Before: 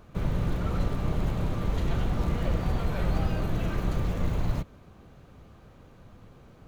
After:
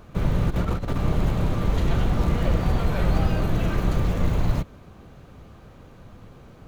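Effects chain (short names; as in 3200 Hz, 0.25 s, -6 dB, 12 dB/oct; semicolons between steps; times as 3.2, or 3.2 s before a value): 0.5–0.99 negative-ratio compressor -29 dBFS, ratio -0.5; gain +5.5 dB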